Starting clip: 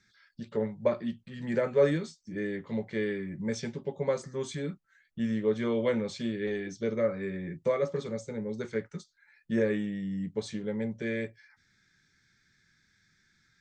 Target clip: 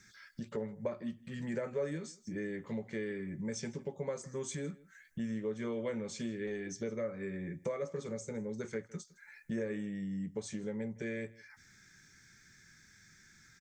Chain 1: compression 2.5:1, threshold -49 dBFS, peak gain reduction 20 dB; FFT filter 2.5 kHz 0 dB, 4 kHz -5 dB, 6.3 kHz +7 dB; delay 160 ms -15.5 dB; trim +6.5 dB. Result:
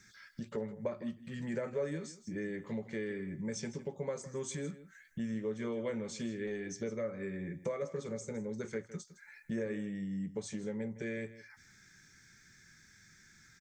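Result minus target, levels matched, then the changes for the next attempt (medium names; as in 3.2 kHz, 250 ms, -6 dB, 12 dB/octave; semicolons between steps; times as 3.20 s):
echo-to-direct +6.5 dB
change: delay 160 ms -22 dB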